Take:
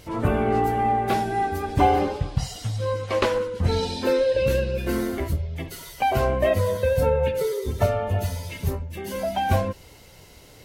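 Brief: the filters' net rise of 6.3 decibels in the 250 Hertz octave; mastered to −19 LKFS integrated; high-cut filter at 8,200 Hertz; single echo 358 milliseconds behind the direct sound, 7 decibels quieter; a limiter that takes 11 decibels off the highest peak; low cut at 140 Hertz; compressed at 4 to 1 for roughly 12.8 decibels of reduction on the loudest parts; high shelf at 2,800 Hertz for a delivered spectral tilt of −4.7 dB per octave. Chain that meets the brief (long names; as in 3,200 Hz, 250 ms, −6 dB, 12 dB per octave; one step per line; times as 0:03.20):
high-pass filter 140 Hz
low-pass filter 8,200 Hz
parametric band 250 Hz +8.5 dB
high-shelf EQ 2,800 Hz +8.5 dB
downward compressor 4 to 1, threshold −27 dBFS
brickwall limiter −24 dBFS
single-tap delay 358 ms −7 dB
level +13 dB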